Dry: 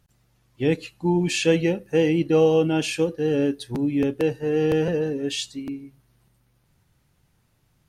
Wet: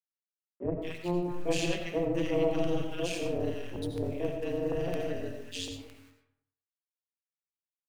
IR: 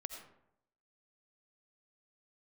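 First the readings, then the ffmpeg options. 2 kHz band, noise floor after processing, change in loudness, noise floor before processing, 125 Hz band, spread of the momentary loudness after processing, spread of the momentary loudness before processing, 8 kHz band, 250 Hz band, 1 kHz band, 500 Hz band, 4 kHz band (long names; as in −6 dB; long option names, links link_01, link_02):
−9.5 dB, below −85 dBFS, −10.5 dB, −66 dBFS, −10.0 dB, 9 LU, 9 LU, −9.0 dB, −11.0 dB, −7.5 dB, −10.0 dB, −9.0 dB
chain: -filter_complex "[0:a]tremolo=f=180:d=1,aeval=exprs='0.376*(cos(1*acos(clip(val(0)/0.376,-1,1)))-cos(1*PI/2))+0.0531*(cos(4*acos(clip(val(0)/0.376,-1,1)))-cos(4*PI/2))+0.0188*(cos(5*acos(clip(val(0)/0.376,-1,1)))-cos(5*PI/2))+0.0106*(cos(6*acos(clip(val(0)/0.376,-1,1)))-cos(6*PI/2))+0.0119*(cos(7*acos(clip(val(0)/0.376,-1,1)))-cos(7*PI/2))':channel_layout=same,aeval=exprs='val(0)*gte(abs(val(0)),0.00562)':channel_layout=same,acrossover=split=210|1200[link_01][link_02][link_03];[link_01]adelay=30[link_04];[link_03]adelay=220[link_05];[link_04][link_02][link_05]amix=inputs=3:normalize=0[link_06];[1:a]atrim=start_sample=2205[link_07];[link_06][link_07]afir=irnorm=-1:irlink=0,volume=-2.5dB"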